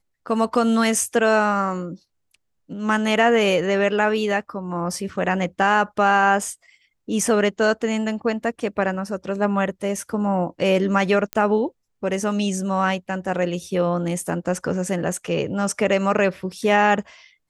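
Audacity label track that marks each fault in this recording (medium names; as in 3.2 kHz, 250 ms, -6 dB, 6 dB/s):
11.330000	11.330000	pop -10 dBFS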